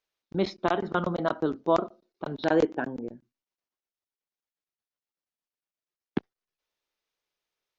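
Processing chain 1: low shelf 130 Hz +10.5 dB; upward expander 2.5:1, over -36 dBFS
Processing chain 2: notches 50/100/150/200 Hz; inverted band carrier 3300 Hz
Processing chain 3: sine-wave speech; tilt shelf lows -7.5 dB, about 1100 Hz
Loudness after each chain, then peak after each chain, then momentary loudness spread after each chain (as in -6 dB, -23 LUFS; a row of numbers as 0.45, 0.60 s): -31.5, -25.5, -31.5 LUFS; -11.5, -10.0, -14.0 dBFS; 13, 14, 18 LU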